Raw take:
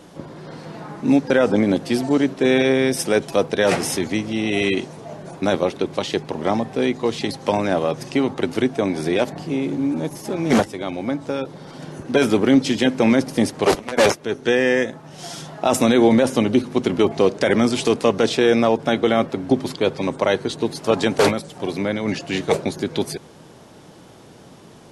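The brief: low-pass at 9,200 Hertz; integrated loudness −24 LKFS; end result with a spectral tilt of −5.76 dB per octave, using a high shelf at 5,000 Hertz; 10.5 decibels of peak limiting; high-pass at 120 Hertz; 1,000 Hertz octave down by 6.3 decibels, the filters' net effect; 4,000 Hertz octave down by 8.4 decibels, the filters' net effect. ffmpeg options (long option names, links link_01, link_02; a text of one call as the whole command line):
ffmpeg -i in.wav -af "highpass=120,lowpass=9200,equalizer=frequency=1000:width_type=o:gain=-8.5,equalizer=frequency=4000:width_type=o:gain=-8.5,highshelf=frequency=5000:gain=-4.5,volume=2.5dB,alimiter=limit=-13.5dB:level=0:latency=1" out.wav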